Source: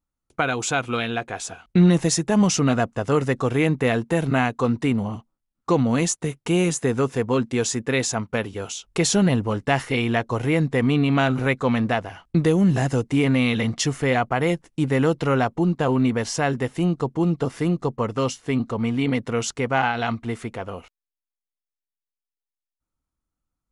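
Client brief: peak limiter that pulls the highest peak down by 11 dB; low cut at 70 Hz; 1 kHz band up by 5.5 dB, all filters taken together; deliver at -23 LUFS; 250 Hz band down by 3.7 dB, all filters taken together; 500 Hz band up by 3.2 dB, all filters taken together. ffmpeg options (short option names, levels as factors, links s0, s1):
-af "highpass=70,equalizer=f=250:t=o:g=-6.5,equalizer=f=500:t=o:g=4,equalizer=f=1000:t=o:g=6.5,volume=1.19,alimiter=limit=0.266:level=0:latency=1"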